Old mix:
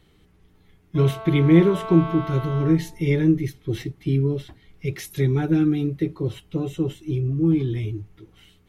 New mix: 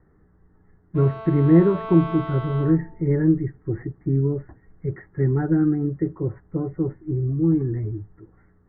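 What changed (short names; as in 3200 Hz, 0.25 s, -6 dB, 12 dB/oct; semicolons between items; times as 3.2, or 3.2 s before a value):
speech: add steep low-pass 1900 Hz 96 dB/oct; master: add air absorption 72 m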